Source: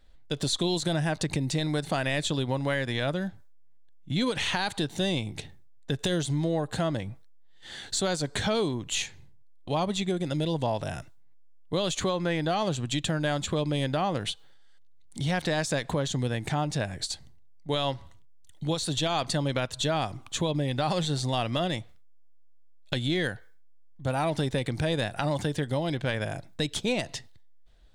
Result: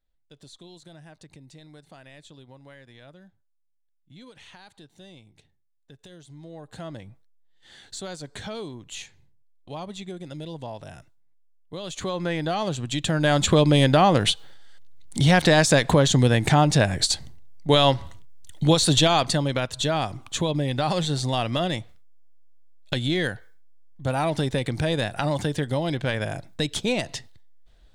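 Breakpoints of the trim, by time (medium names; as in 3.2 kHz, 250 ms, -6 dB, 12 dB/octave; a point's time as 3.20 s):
6.19 s -20 dB
6.91 s -8 dB
11.79 s -8 dB
12.20 s +1 dB
12.92 s +1 dB
13.46 s +10.5 dB
18.96 s +10.5 dB
19.48 s +3 dB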